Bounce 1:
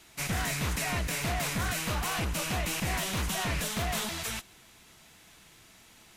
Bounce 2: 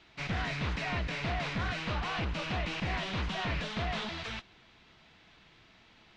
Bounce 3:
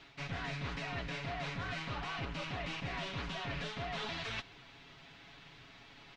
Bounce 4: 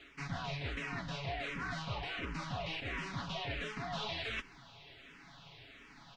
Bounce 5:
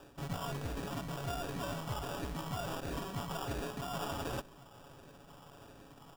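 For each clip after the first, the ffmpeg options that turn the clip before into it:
-af "lowpass=f=4.3k:w=0.5412,lowpass=f=4.3k:w=1.3066,volume=-2dB"
-af "aecho=1:1:7.2:0.64,areverse,acompressor=threshold=-40dB:ratio=6,areverse,volume=2.5dB"
-filter_complex "[0:a]asplit=2[a][b];[b]afreqshift=-1.4[c];[a][c]amix=inputs=2:normalize=1,volume=3dB"
-af "acrusher=samples=21:mix=1:aa=0.000001,volume=1dB"

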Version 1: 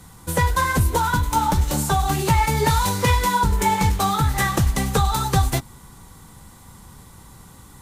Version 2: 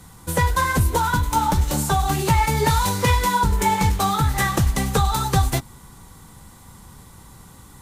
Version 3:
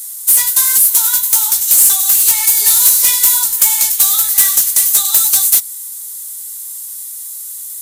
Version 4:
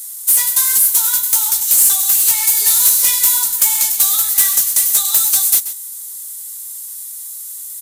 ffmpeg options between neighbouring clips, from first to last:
-af anull
-af "crystalizer=i=6:c=0,aderivative,acontrast=79,volume=-2dB"
-af "aecho=1:1:133:0.224,volume=-2.5dB"

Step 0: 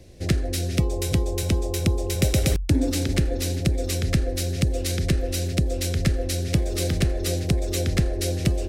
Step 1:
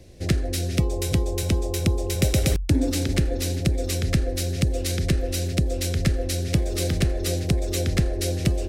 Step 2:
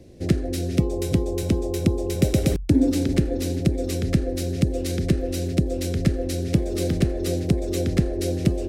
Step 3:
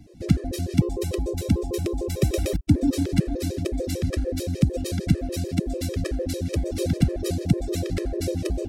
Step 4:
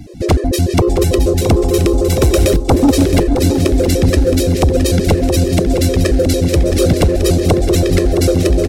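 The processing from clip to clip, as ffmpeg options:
-af anull
-af "equalizer=f=270:w=0.53:g=10.5,volume=-5dB"
-af "afftfilt=real='re*gt(sin(2*PI*6.7*pts/sr)*(1-2*mod(floor(b*sr/1024/330),2)),0)':imag='im*gt(sin(2*PI*6.7*pts/sr)*(1-2*mod(floor(b*sr/1024/330),2)),0)':win_size=1024:overlap=0.75,volume=1.5dB"
-af "aeval=exprs='0.531*sin(PI/2*3.55*val(0)/0.531)':c=same,aecho=1:1:668|1336|2004|2672|3340:0.355|0.16|0.0718|0.0323|0.0145"

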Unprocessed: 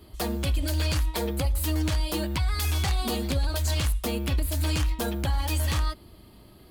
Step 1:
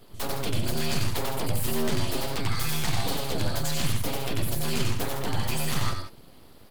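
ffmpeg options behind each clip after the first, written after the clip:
-af "aecho=1:1:93.29|160.3:0.708|0.355,aeval=exprs='abs(val(0))':c=same"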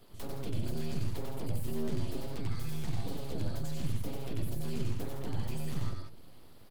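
-filter_complex "[0:a]acrossover=split=500[a][b];[a]aecho=1:1:250|500|750|1000:0.0631|0.0366|0.0212|0.0123[c];[b]acompressor=threshold=-44dB:ratio=4[d];[c][d]amix=inputs=2:normalize=0,volume=-6dB"

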